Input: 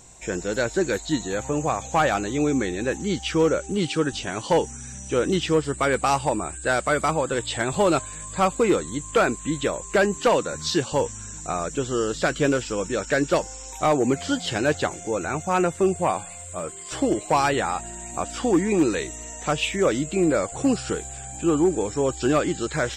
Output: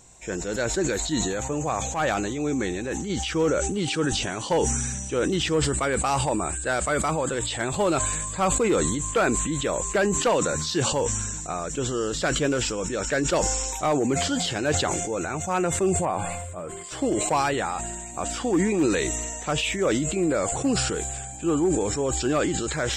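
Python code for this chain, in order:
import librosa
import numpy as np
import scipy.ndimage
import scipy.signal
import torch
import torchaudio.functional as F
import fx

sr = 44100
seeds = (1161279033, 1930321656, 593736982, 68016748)

y = fx.transient(x, sr, attack_db=-7, sustain_db=5, at=(1.83, 3.1))
y = fx.peak_eq(y, sr, hz=6500.0, db=-12.0, octaves=2.5, at=(16.05, 16.84))
y = fx.sustainer(y, sr, db_per_s=28.0)
y = F.gain(torch.from_numpy(y), -3.5).numpy()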